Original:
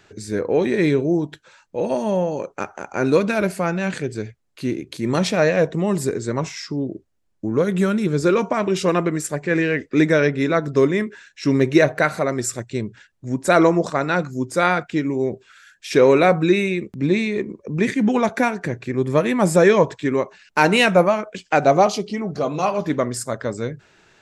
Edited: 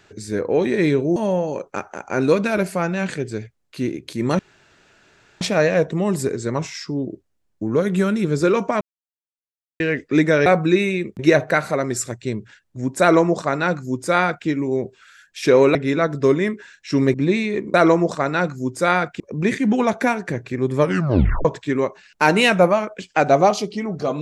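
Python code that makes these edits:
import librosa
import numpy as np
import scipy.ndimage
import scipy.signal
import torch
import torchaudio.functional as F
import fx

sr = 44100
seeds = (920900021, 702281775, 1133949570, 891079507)

y = fx.edit(x, sr, fx.cut(start_s=1.16, length_s=0.84),
    fx.insert_room_tone(at_s=5.23, length_s=1.02),
    fx.silence(start_s=8.63, length_s=0.99),
    fx.swap(start_s=10.28, length_s=1.39, other_s=16.23, other_length_s=0.73),
    fx.duplicate(start_s=13.49, length_s=1.46, to_s=17.56),
    fx.tape_stop(start_s=19.16, length_s=0.65), tone=tone)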